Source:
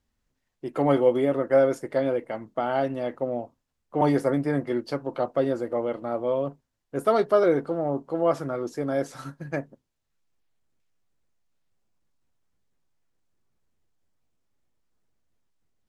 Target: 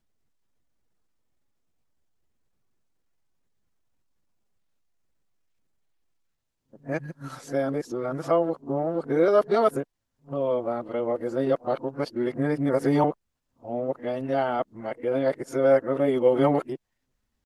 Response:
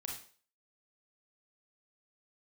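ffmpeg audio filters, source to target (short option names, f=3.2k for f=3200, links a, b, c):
-af "areverse,atempo=0.91"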